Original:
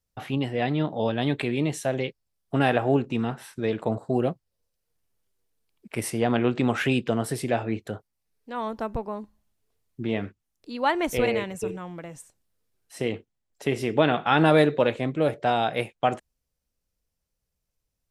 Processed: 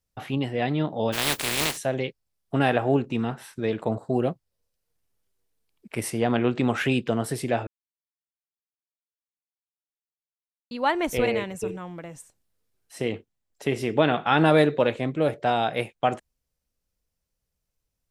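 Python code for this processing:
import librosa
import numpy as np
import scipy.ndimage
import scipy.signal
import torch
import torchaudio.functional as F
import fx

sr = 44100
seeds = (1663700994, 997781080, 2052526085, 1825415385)

y = fx.spec_flatten(x, sr, power=0.22, at=(1.12, 1.76), fade=0.02)
y = fx.edit(y, sr, fx.silence(start_s=7.67, length_s=3.04), tone=tone)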